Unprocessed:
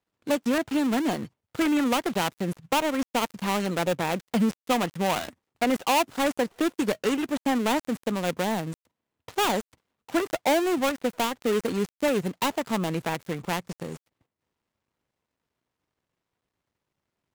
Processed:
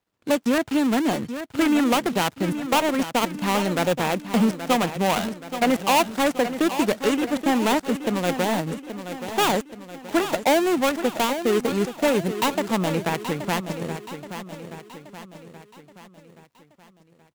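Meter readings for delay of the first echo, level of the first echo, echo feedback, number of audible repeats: 0.826 s, -10.5 dB, 50%, 5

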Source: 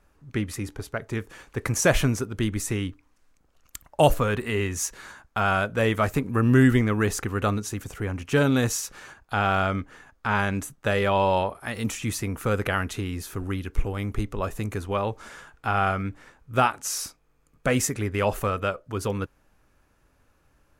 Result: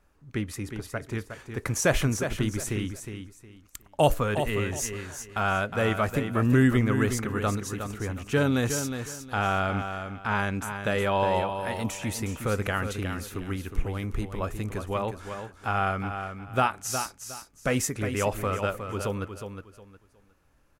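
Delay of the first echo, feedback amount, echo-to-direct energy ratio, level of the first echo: 0.362 s, 25%, -7.5 dB, -8.0 dB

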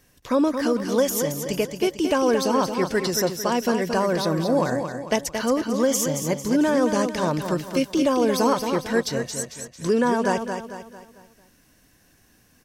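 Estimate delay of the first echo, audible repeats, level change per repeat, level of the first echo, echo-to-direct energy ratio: 0.224 s, 4, -7.5 dB, -7.0 dB, -6.0 dB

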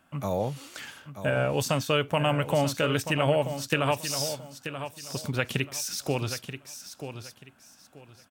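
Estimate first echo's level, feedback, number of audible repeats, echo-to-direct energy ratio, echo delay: -10.0 dB, 25%, 3, -9.5 dB, 0.933 s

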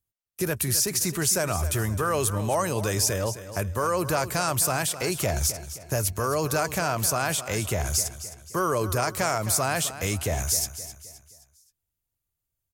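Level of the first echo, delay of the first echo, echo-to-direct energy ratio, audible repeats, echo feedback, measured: -13.0 dB, 0.262 s, -12.0 dB, 3, 42%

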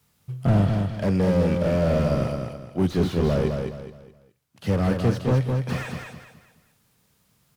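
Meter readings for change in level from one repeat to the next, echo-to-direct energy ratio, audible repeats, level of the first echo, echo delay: -9.5 dB, -4.5 dB, 4, -5.0 dB, 0.21 s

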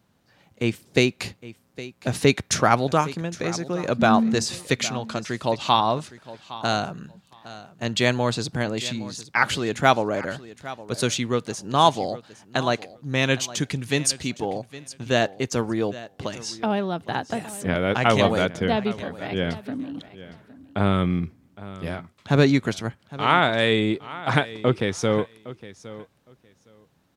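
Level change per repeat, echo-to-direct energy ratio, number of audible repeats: -16.0 dB, -17.0 dB, 2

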